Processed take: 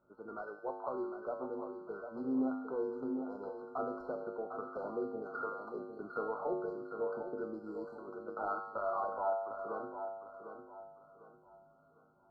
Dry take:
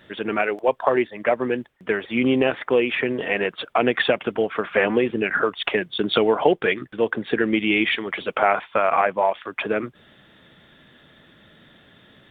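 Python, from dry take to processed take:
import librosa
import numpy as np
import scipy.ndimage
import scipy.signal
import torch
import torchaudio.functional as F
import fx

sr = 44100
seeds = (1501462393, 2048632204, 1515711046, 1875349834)

p1 = fx.low_shelf(x, sr, hz=440.0, db=-10.0)
p2 = np.clip(10.0 ** (20.5 / 20.0) * p1, -1.0, 1.0) / 10.0 ** (20.5 / 20.0)
p3 = p1 + (p2 * 10.0 ** (-3.0 / 20.0))
p4 = fx.brickwall_bandstop(p3, sr, low_hz=1500.0, high_hz=4000.0)
p5 = fx.air_absorb(p4, sr, metres=470.0)
p6 = fx.comb_fb(p5, sr, f0_hz=52.0, decay_s=0.97, harmonics='odd', damping=0.0, mix_pct=90)
p7 = fx.echo_feedback(p6, sr, ms=752, feedback_pct=33, wet_db=-8.0)
y = p7 * 10.0 ** (-2.5 / 20.0)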